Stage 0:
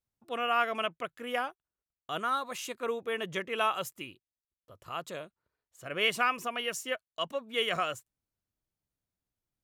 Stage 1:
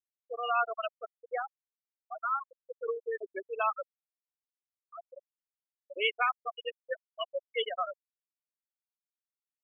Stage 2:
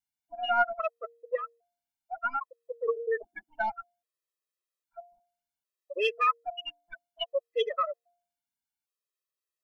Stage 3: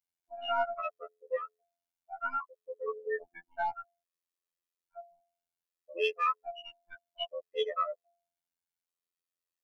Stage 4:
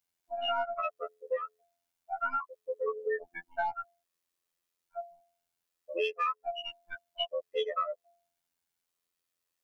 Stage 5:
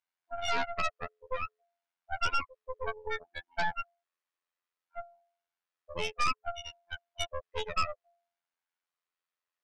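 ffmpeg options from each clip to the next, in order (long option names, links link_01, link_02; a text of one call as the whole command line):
ffmpeg -i in.wav -af "afftfilt=real='re*gte(hypot(re,im),0.126)':imag='im*gte(hypot(re,im),0.126)':win_size=1024:overlap=0.75" out.wav
ffmpeg -i in.wav -af "bandreject=frequency=233.5:width_type=h:width=4,bandreject=frequency=467:width_type=h:width=4,bandreject=frequency=700.5:width_type=h:width=4,aeval=exprs='0.178*(cos(1*acos(clip(val(0)/0.178,-1,1)))-cos(1*PI/2))+0.00891*(cos(2*acos(clip(val(0)/0.178,-1,1)))-cos(2*PI/2))+0.00251*(cos(6*acos(clip(val(0)/0.178,-1,1)))-cos(6*PI/2))':channel_layout=same,afftfilt=real='re*gt(sin(2*PI*0.62*pts/sr)*(1-2*mod(floor(b*sr/1024/340),2)),0)':imag='im*gt(sin(2*PI*0.62*pts/sr)*(1-2*mod(floor(b*sr/1024/340),2)),0)':win_size=1024:overlap=0.75,volume=6dB" out.wav
ffmpeg -i in.wav -af "afftfilt=real='hypot(re,im)*cos(PI*b)':imag='0':win_size=2048:overlap=0.75" out.wav
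ffmpeg -i in.wav -af "acompressor=threshold=-37dB:ratio=4,volume=7.5dB" out.wav
ffmpeg -i in.wav -af "bandpass=frequency=1300:width_type=q:width=0.83:csg=0,aeval=exprs='0.0891*(cos(1*acos(clip(val(0)/0.0891,-1,1)))-cos(1*PI/2))+0.0282*(cos(6*acos(clip(val(0)/0.0891,-1,1)))-cos(6*PI/2))':channel_layout=same" out.wav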